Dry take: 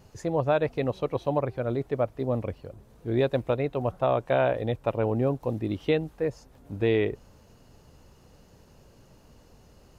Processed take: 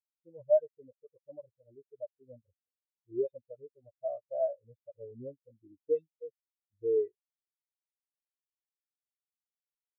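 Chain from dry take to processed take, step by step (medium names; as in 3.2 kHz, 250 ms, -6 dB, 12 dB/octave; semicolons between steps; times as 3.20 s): delay that grows with frequency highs late, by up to 139 ms; treble shelf 2.7 kHz +11.5 dB; spectral contrast expander 4:1; trim -4 dB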